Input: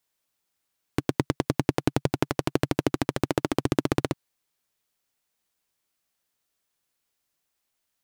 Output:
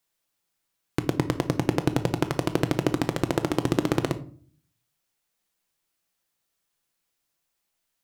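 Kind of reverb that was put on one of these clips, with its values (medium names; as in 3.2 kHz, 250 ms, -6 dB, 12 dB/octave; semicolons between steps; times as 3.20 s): simulated room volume 440 m³, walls furnished, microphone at 0.75 m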